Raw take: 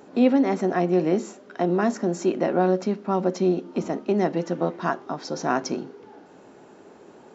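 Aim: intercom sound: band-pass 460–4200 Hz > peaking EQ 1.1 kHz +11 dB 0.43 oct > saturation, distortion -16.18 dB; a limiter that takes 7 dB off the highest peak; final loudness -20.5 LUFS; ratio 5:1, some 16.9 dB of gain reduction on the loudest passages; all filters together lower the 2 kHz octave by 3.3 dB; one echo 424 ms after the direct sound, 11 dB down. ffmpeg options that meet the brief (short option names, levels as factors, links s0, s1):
-af "equalizer=f=2000:t=o:g=-7,acompressor=threshold=0.02:ratio=5,alimiter=level_in=1.68:limit=0.0631:level=0:latency=1,volume=0.596,highpass=460,lowpass=4200,equalizer=f=1100:t=o:w=0.43:g=11,aecho=1:1:424:0.282,asoftclip=threshold=0.0237,volume=15.8"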